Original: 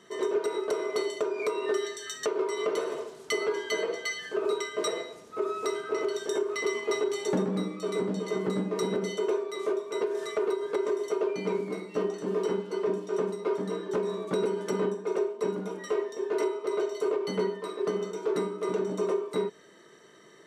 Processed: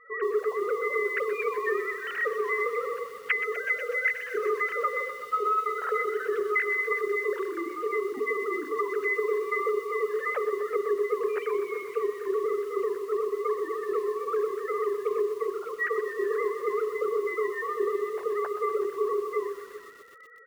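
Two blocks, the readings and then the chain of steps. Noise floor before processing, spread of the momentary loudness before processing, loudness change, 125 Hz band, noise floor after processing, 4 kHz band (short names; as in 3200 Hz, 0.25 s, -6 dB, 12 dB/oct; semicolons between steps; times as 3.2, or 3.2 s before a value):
-53 dBFS, 3 LU, +2.0 dB, under -25 dB, -43 dBFS, under -10 dB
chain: sine-wave speech; band shelf 1500 Hz +11.5 dB 1.1 oct; notches 50/100/150/200/250/300/350/400/450/500 Hz; compressor 16:1, threshold -27 dBFS, peak gain reduction 17 dB; air absorption 57 m; echo 0.386 s -18.5 dB; lo-fi delay 0.124 s, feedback 80%, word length 8-bit, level -12.5 dB; gain +3.5 dB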